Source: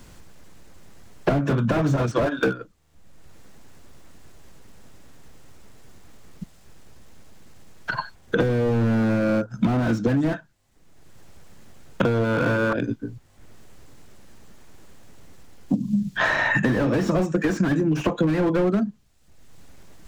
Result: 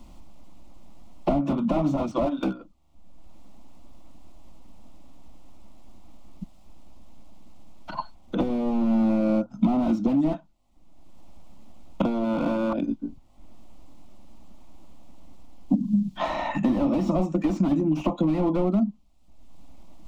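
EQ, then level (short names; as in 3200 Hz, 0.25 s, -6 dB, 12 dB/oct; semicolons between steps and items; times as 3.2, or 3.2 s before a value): tone controls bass -3 dB, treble -11 dB; low shelf 210 Hz +7 dB; fixed phaser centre 440 Hz, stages 6; 0.0 dB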